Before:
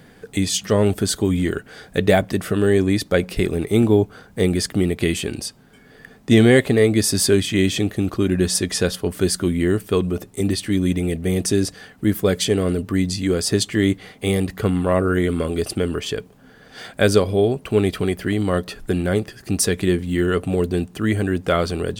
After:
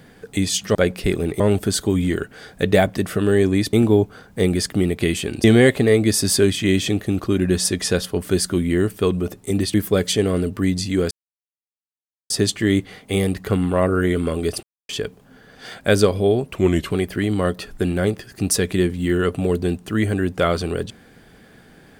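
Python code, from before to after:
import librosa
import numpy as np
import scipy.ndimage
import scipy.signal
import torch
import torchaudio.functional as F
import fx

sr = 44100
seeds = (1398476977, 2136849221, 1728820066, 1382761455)

y = fx.edit(x, sr, fx.move(start_s=3.08, length_s=0.65, to_s=0.75),
    fx.cut(start_s=5.44, length_s=0.9),
    fx.cut(start_s=10.64, length_s=1.42),
    fx.insert_silence(at_s=13.43, length_s=1.19),
    fx.silence(start_s=15.76, length_s=0.26),
    fx.speed_span(start_s=17.68, length_s=0.31, speed=0.88), tone=tone)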